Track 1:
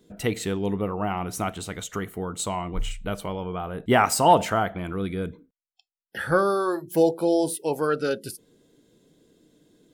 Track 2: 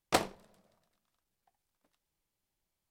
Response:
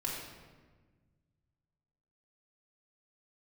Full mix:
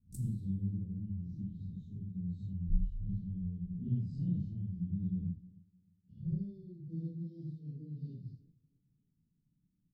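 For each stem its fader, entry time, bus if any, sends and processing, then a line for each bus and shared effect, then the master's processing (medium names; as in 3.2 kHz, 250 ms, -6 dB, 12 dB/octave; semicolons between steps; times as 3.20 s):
-7.5 dB, 0.00 s, no send, echo send -21 dB, phase randomisation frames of 200 ms; steep low-pass 4.2 kHz 48 dB/octave
-5.0 dB, 0.00 s, send -13.5 dB, no echo send, auto duck -21 dB, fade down 0.25 s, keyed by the first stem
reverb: on, RT60 1.4 s, pre-delay 3 ms
echo: feedback delay 307 ms, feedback 52%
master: gate -55 dBFS, range -7 dB; elliptic band-stop 180–8000 Hz, stop band 70 dB; bass shelf 210 Hz +7.5 dB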